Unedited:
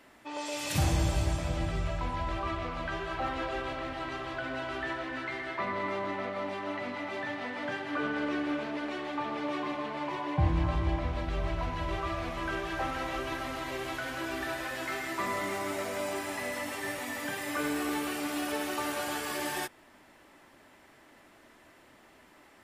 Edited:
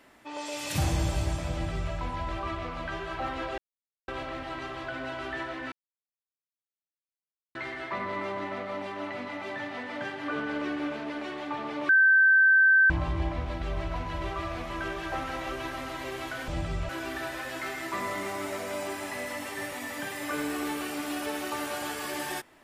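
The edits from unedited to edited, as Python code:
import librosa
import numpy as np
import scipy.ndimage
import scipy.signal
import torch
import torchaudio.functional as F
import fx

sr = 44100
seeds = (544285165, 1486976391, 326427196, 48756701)

y = fx.edit(x, sr, fx.duplicate(start_s=1.52, length_s=0.41, to_s=14.15),
    fx.insert_silence(at_s=3.58, length_s=0.5),
    fx.insert_silence(at_s=5.22, length_s=1.83),
    fx.bleep(start_s=9.56, length_s=1.01, hz=1550.0, db=-16.0), tone=tone)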